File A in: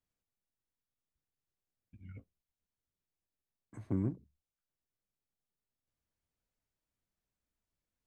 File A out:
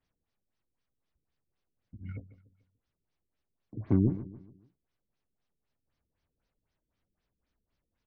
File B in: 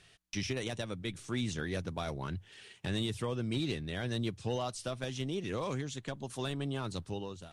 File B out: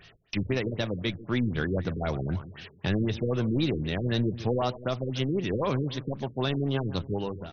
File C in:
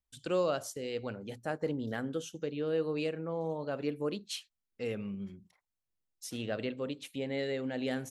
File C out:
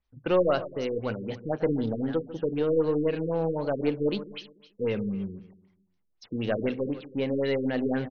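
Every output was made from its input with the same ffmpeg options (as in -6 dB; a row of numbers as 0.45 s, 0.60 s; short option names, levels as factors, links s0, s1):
-filter_complex "[0:a]asplit=2[s0][s1];[s1]aeval=exprs='clip(val(0),-1,0.0106)':c=same,volume=0.501[s2];[s0][s2]amix=inputs=2:normalize=0,aecho=1:1:145|290|435|580:0.178|0.0729|0.0299|0.0123,afftfilt=real='re*lt(b*sr/1024,470*pow(6600/470,0.5+0.5*sin(2*PI*3.9*pts/sr)))':imag='im*lt(b*sr/1024,470*pow(6600/470,0.5+0.5*sin(2*PI*3.9*pts/sr)))':win_size=1024:overlap=0.75,volume=1.88"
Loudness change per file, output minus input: +6.0 LU, +7.5 LU, +7.5 LU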